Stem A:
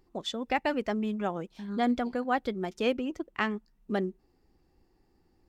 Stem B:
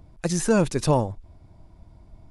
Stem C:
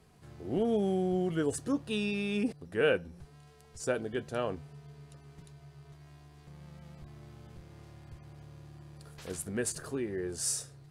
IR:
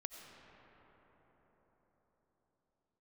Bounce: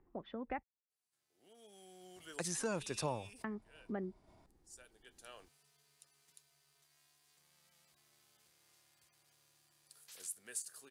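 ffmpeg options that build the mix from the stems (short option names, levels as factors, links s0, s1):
-filter_complex "[0:a]lowpass=f=2100:w=0.5412,lowpass=f=2100:w=1.3066,volume=0.596,asplit=3[s0][s1][s2];[s0]atrim=end=0.63,asetpts=PTS-STARTPTS,afade=t=out:st=0.626:d=0.004:c=hsin[s3];[s1]atrim=start=0.63:end=3.44,asetpts=PTS-STARTPTS,volume=0[s4];[s2]atrim=start=3.44,asetpts=PTS-STARTPTS,afade=t=in:d=0.004:c=hsin[s5];[s3][s4][s5]concat=n=3:v=0:a=1,asplit=2[s6][s7];[1:a]agate=range=0.0224:threshold=0.00562:ratio=3:detection=peak,highpass=f=670:p=1,adelay=2150,volume=0.794[s8];[2:a]aderivative,adelay=900,volume=1[s9];[s7]apad=whole_len=520572[s10];[s9][s10]sidechaincompress=threshold=0.00158:ratio=8:attack=24:release=865[s11];[s6][s8][s11]amix=inputs=3:normalize=0,acrossover=split=120[s12][s13];[s13]acompressor=threshold=0.00631:ratio=2[s14];[s12][s14]amix=inputs=2:normalize=0"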